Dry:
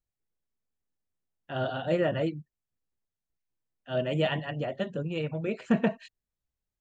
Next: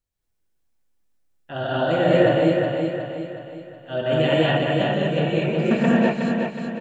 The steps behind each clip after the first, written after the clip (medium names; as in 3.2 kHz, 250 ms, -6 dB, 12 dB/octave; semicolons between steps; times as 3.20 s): feedback delay 367 ms, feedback 47%, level -5 dB; gated-style reverb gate 260 ms rising, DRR -6 dB; trim +2.5 dB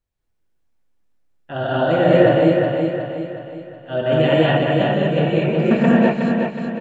treble shelf 4.2 kHz -10.5 dB; trim +4 dB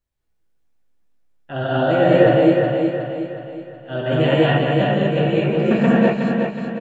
doubling 15 ms -5.5 dB; trim -1 dB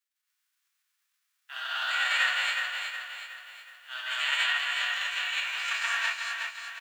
formants flattened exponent 0.6; inverse Chebyshev high-pass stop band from 370 Hz, stop band 60 dB; trim -4.5 dB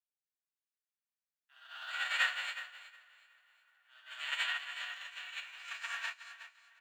feedback echo behind a band-pass 872 ms, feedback 65%, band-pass 1.1 kHz, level -17 dB; upward expansion 2.5:1, over -37 dBFS; trim -3 dB